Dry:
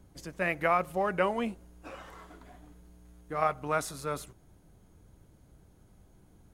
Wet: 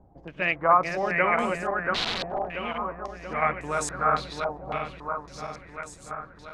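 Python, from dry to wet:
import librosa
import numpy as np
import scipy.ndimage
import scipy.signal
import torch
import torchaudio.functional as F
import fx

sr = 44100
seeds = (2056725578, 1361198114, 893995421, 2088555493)

y = fx.reverse_delay_fb(x, sr, ms=342, feedback_pct=78, wet_db=-3)
y = fx.overflow_wrap(y, sr, gain_db=26.0, at=(1.93, 2.51), fade=0.02)
y = fx.filter_held_lowpass(y, sr, hz=3.6, low_hz=780.0, high_hz=7700.0)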